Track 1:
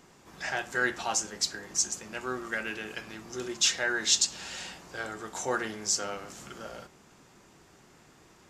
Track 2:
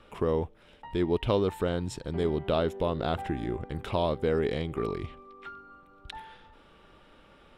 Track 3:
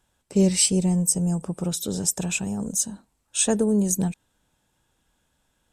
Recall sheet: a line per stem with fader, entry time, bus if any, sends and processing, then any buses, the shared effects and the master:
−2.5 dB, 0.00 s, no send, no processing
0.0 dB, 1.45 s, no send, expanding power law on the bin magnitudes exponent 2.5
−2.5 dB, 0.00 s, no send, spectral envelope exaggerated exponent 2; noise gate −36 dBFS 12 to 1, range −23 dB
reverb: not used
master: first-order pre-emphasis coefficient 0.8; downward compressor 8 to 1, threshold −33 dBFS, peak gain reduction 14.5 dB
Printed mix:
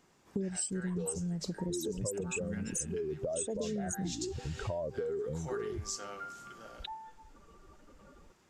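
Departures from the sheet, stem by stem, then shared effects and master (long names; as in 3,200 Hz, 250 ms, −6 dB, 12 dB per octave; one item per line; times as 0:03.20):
stem 1 −2.5 dB → −9.5 dB
stem 2: entry 1.45 s → 0.75 s
master: missing first-order pre-emphasis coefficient 0.8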